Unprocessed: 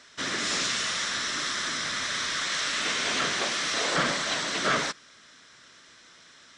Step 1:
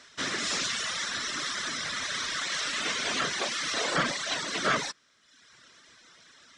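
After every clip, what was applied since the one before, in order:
reverb reduction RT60 1 s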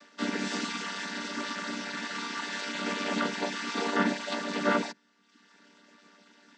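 channel vocoder with a chord as carrier minor triad, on G3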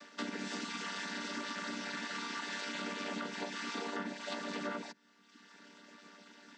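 downward compressor 6 to 1, threshold −39 dBFS, peak gain reduction 17 dB
level +1.5 dB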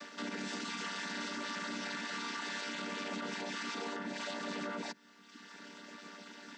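brickwall limiter −37.5 dBFS, peak gain reduction 11 dB
level +6 dB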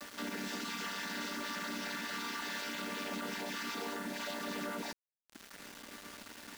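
bit reduction 8 bits

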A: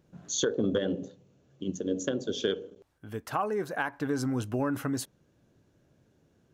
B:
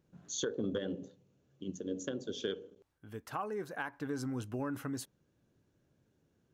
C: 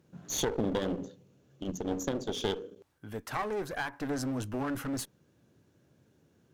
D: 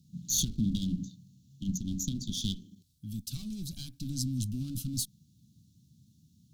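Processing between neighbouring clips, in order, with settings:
parametric band 650 Hz −3 dB 0.44 octaves; level −7.5 dB
high-pass filter 74 Hz; asymmetric clip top −45 dBFS; level +8 dB
elliptic band-stop filter 210–3,900 Hz, stop band 40 dB; level +7 dB

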